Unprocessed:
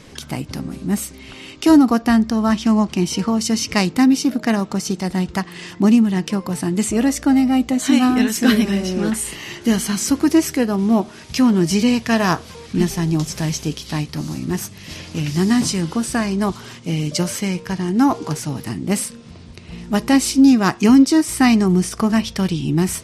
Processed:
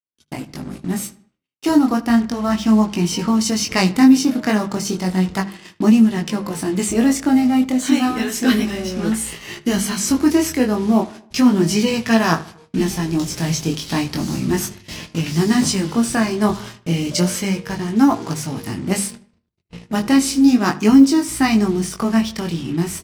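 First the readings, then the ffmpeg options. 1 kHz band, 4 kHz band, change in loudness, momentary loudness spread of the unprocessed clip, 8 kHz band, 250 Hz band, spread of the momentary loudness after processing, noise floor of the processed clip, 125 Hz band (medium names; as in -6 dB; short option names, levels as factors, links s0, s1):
0.0 dB, +0.5 dB, 0.0 dB, 12 LU, +0.5 dB, 0.0 dB, 12 LU, -58 dBFS, -1.0 dB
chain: -filter_complex "[0:a]dynaudnorm=f=150:g=11:m=4.47,flanger=delay=18:depth=5.9:speed=0.33,agate=range=0.00158:threshold=0.0251:ratio=16:detection=peak,asplit=2[s0][s1];[s1]acrusher=bits=4:mix=0:aa=0.5,volume=0.708[s2];[s0][s2]amix=inputs=2:normalize=0,bandreject=f=50:t=h:w=6,bandreject=f=100:t=h:w=6,bandreject=f=150:t=h:w=6,bandreject=f=200:t=h:w=6,asplit=2[s3][s4];[s4]adelay=77,lowpass=f=3300:p=1,volume=0.126,asplit=2[s5][s6];[s6]adelay=77,lowpass=f=3300:p=1,volume=0.47,asplit=2[s7][s8];[s8]adelay=77,lowpass=f=3300:p=1,volume=0.47,asplit=2[s9][s10];[s10]adelay=77,lowpass=f=3300:p=1,volume=0.47[s11];[s5][s7][s9][s11]amix=inputs=4:normalize=0[s12];[s3][s12]amix=inputs=2:normalize=0,volume=0.562"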